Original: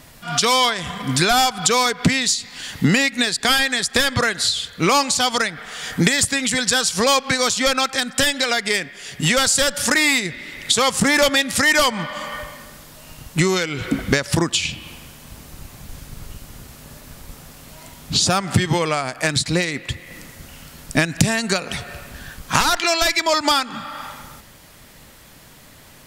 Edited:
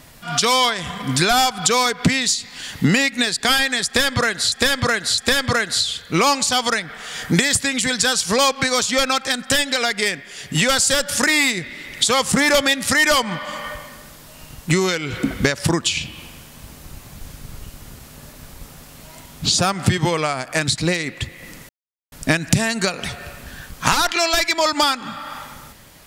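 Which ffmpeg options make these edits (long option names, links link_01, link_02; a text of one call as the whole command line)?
ffmpeg -i in.wav -filter_complex "[0:a]asplit=5[link_01][link_02][link_03][link_04][link_05];[link_01]atrim=end=4.522[link_06];[link_02]atrim=start=3.858:end=4.522[link_07];[link_03]atrim=start=3.858:end=20.37,asetpts=PTS-STARTPTS,afade=type=out:start_time=16.508:duration=0.004:curve=hsin[link_08];[link_04]atrim=start=20.37:end=20.8,asetpts=PTS-STARTPTS,volume=0[link_09];[link_05]atrim=start=20.8,asetpts=PTS-STARTPTS,afade=type=in:duration=0.004:curve=hsin[link_10];[link_06][link_07]acrossfade=duration=0.004:curve1=hsin:curve2=hsin[link_11];[link_08][link_09][link_10]concat=n=3:v=0:a=1[link_12];[link_11][link_12]acrossfade=duration=0.004:curve1=hsin:curve2=hsin" out.wav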